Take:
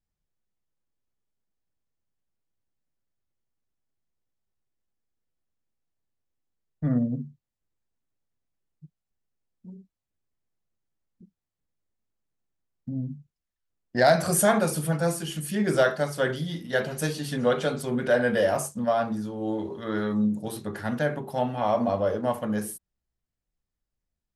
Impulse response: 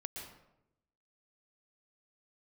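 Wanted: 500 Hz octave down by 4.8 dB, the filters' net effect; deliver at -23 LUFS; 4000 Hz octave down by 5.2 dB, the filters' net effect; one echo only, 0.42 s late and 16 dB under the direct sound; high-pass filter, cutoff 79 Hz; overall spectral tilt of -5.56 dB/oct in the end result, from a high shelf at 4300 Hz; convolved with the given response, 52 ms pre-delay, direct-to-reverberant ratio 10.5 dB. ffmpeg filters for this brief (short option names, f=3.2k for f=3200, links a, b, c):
-filter_complex "[0:a]highpass=79,equalizer=f=500:t=o:g=-6,equalizer=f=4k:t=o:g=-5,highshelf=f=4.3k:g=-3,aecho=1:1:420:0.158,asplit=2[a][b];[1:a]atrim=start_sample=2205,adelay=52[c];[b][c]afir=irnorm=-1:irlink=0,volume=-9dB[d];[a][d]amix=inputs=2:normalize=0,volume=5.5dB"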